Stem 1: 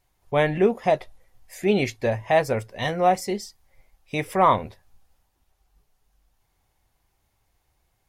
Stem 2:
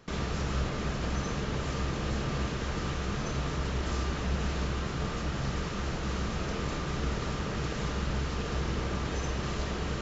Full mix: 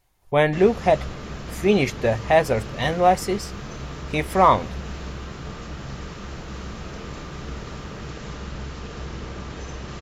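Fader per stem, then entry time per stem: +2.5, −2.0 decibels; 0.00, 0.45 seconds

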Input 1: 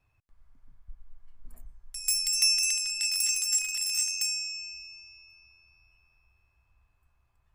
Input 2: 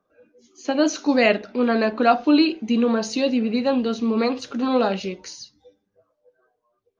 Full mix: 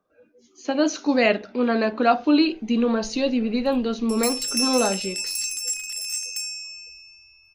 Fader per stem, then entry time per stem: −0.5, −1.5 decibels; 2.15, 0.00 seconds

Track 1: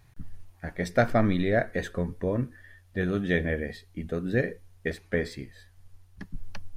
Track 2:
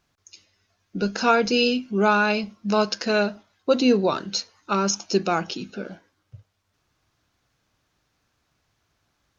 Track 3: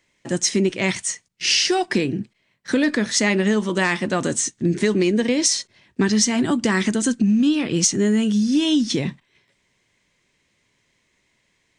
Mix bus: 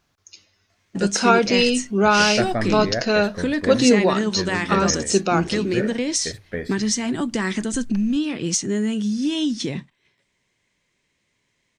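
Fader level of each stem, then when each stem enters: −1.5, +2.5, −4.0 decibels; 1.40, 0.00, 0.70 seconds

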